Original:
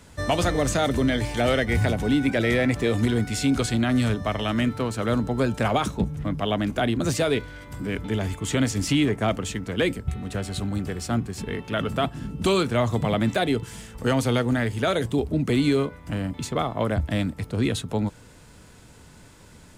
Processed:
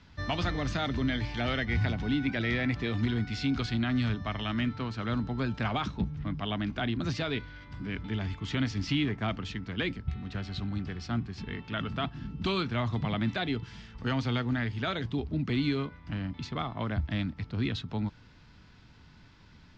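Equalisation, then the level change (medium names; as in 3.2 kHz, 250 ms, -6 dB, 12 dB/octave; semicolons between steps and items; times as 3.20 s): steep low-pass 5.2 kHz 36 dB/octave; peaking EQ 510 Hz -10.5 dB 1 oct; -5.0 dB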